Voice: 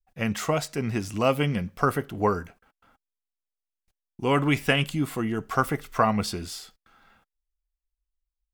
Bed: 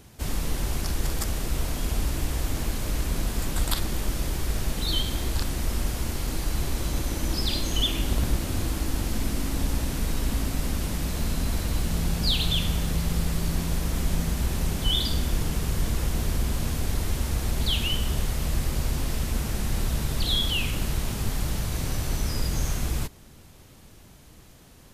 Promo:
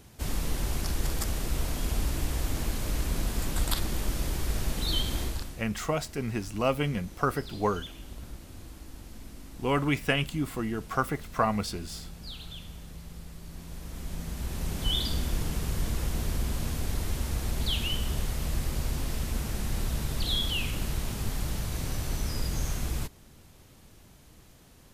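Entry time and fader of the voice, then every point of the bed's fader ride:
5.40 s, −4.0 dB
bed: 0:05.22 −2.5 dB
0:05.67 −18 dB
0:13.41 −18 dB
0:14.87 −4 dB

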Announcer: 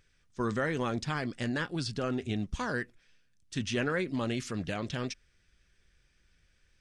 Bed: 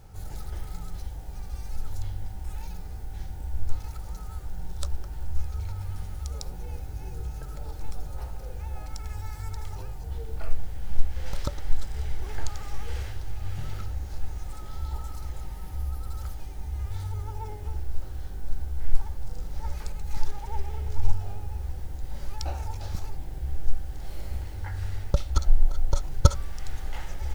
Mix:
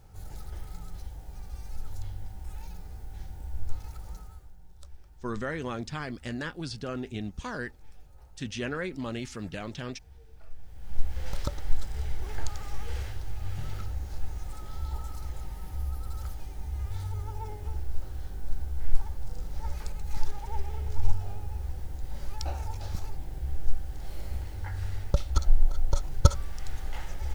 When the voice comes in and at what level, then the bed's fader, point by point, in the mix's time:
4.85 s, −2.5 dB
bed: 0:04.15 −4.5 dB
0:04.58 −18 dB
0:10.50 −18 dB
0:11.09 −1.5 dB

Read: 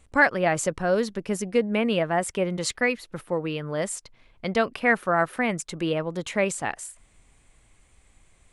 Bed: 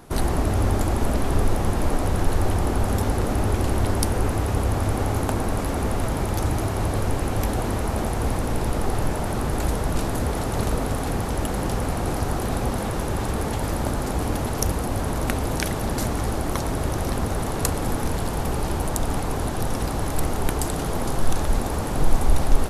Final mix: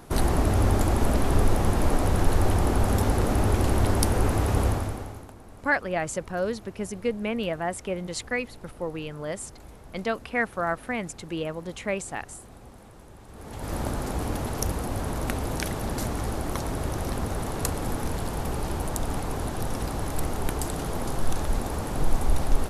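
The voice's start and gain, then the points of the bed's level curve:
5.50 s, −5.0 dB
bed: 0:04.67 −0.5 dB
0:05.34 −23 dB
0:13.26 −23 dB
0:13.75 −4.5 dB

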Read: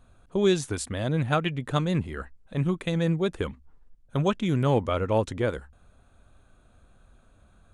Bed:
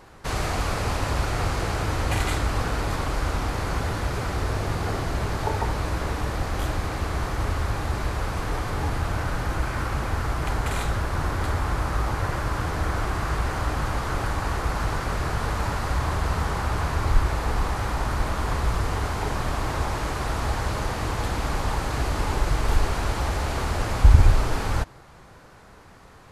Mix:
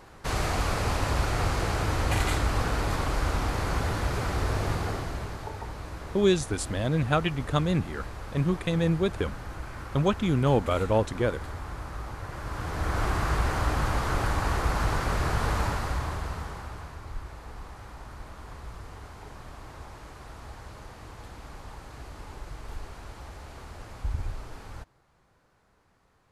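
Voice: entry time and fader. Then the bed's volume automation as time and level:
5.80 s, 0.0 dB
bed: 0:04.71 −1.5 dB
0:05.51 −12 dB
0:12.26 −12 dB
0:13.05 −0.5 dB
0:15.58 −0.5 dB
0:17.01 −17.5 dB

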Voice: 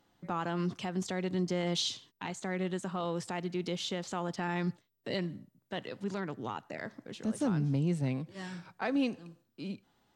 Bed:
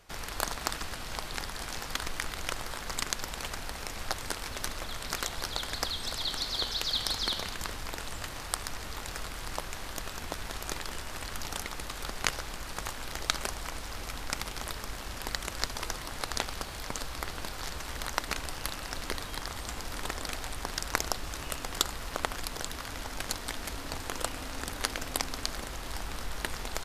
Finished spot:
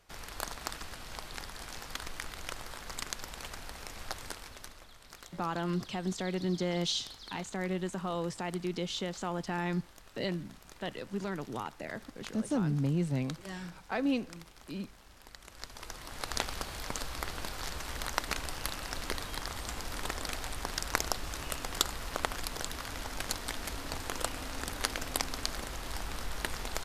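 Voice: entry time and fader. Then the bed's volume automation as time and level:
5.10 s, 0.0 dB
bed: 0:04.25 −6 dB
0:04.93 −17.5 dB
0:15.34 −17.5 dB
0:16.38 −1 dB

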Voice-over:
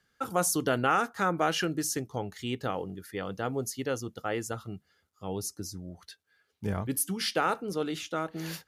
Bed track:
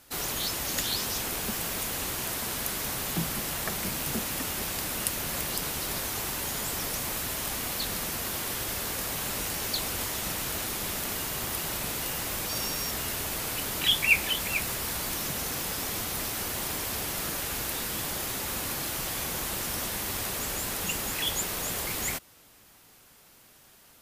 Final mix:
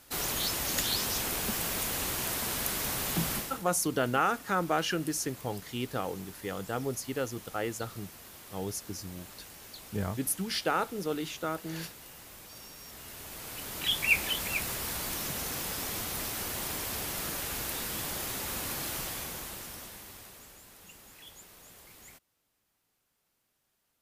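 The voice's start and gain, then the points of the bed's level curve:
3.30 s, −1.5 dB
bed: 0:03.36 −0.5 dB
0:03.64 −17 dB
0:12.76 −17 dB
0:14.14 −3 dB
0:18.97 −3 dB
0:20.63 −21.5 dB

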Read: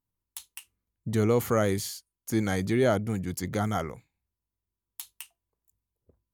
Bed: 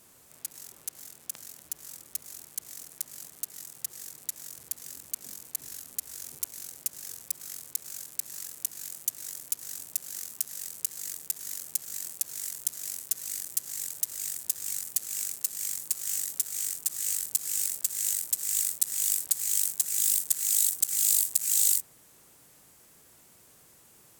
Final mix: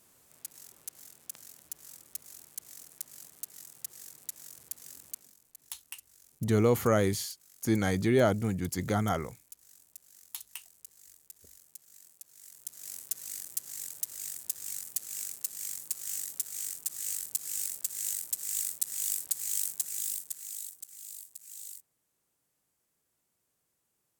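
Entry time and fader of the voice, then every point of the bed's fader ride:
5.35 s, −0.5 dB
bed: 0:05.12 −5.5 dB
0:05.34 −19 dB
0:12.34 −19 dB
0:12.96 −5 dB
0:19.77 −5 dB
0:20.98 −21.5 dB

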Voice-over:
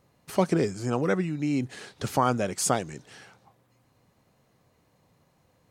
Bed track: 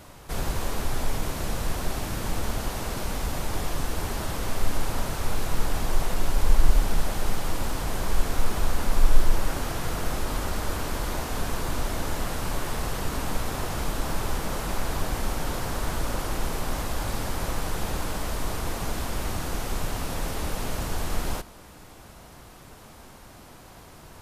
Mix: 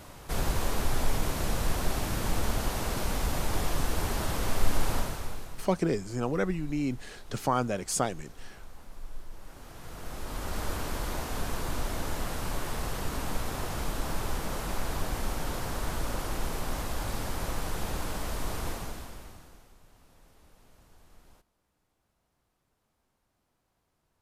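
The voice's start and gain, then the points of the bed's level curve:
5.30 s, −3.5 dB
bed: 0:04.95 −0.5 dB
0:05.80 −23.5 dB
0:09.30 −23.5 dB
0:10.60 −4 dB
0:18.69 −4 dB
0:19.77 −29.5 dB

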